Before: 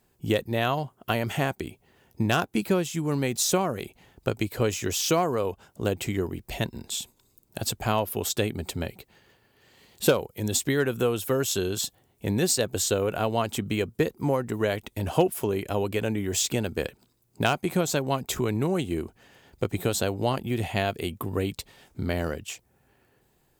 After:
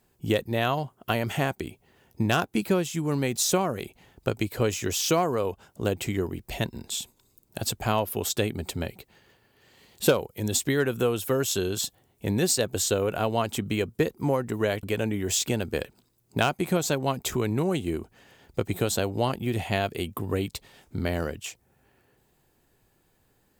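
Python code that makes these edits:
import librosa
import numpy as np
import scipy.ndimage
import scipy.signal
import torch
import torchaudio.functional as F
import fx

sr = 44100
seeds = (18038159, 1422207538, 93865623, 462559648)

y = fx.edit(x, sr, fx.cut(start_s=14.83, length_s=1.04), tone=tone)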